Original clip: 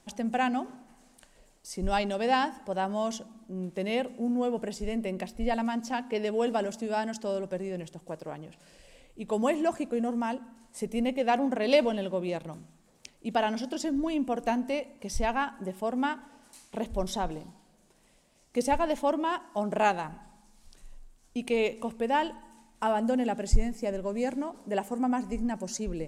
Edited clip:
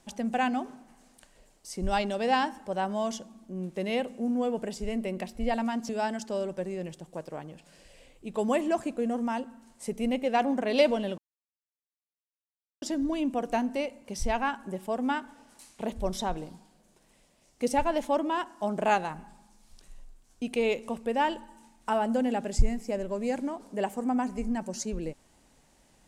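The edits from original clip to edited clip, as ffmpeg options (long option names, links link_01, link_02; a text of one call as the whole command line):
ffmpeg -i in.wav -filter_complex "[0:a]asplit=4[link_01][link_02][link_03][link_04];[link_01]atrim=end=5.892[link_05];[link_02]atrim=start=6.828:end=12.12,asetpts=PTS-STARTPTS,afade=type=out:start_time=5.288:duration=0.004:curve=hsin[link_06];[link_03]atrim=start=12.12:end=13.76,asetpts=PTS-STARTPTS,volume=0[link_07];[link_04]atrim=start=13.76,asetpts=PTS-STARTPTS,afade=type=in:duration=0.004:curve=hsin[link_08];[link_06][link_07][link_08]concat=n=3:v=0:a=1[link_09];[link_05][link_09]acrossfade=duration=0.004:curve1=hsin:curve2=hsin" out.wav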